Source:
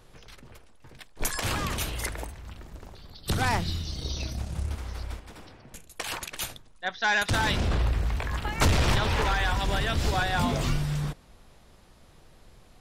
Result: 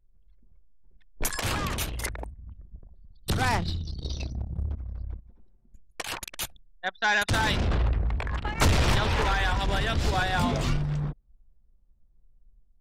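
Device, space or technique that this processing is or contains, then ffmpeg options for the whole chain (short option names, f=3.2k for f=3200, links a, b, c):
voice memo with heavy noise removal: -af "anlmdn=6.31,dynaudnorm=f=280:g=3:m=4dB,volume=-3.5dB"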